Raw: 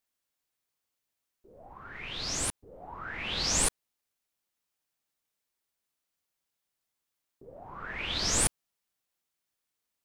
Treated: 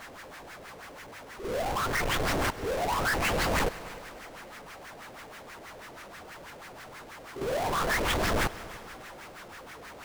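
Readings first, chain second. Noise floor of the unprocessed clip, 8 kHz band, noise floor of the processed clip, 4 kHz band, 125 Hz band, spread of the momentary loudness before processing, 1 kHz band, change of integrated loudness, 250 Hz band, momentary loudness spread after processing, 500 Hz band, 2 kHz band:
-85 dBFS, -8.5 dB, -47 dBFS, -1.5 dB, +7.0 dB, 20 LU, +12.0 dB, +0.5 dB, +8.0 dB, 18 LU, +13.0 dB, +8.5 dB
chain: in parallel at -1 dB: level quantiser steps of 14 dB; on the sum: pre-echo 52 ms -23 dB; LFO low-pass sine 6.2 Hz 510–2000 Hz; compressor 2:1, threshold -37 dBFS, peak gain reduction 9 dB; power-law curve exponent 0.35; high shelf 5100 Hz +5.5 dB; on a send: multi-head echo 99 ms, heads all three, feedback 56%, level -22.5 dB

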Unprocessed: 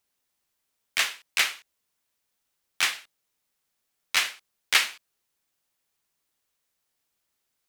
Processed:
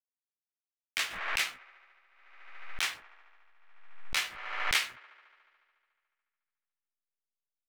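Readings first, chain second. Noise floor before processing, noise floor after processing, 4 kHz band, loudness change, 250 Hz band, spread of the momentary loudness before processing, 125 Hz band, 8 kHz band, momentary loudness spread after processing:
-79 dBFS, under -85 dBFS, -7.0 dB, -6.5 dB, -2.5 dB, 9 LU, n/a, -8.0 dB, 19 LU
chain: de-hum 339.6 Hz, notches 5; backlash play -34 dBFS; doubler 16 ms -7 dB; on a send: band-limited delay 72 ms, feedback 79%, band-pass 850 Hz, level -16 dB; on the sum: backwards sustainer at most 51 dB/s; gain -8.5 dB

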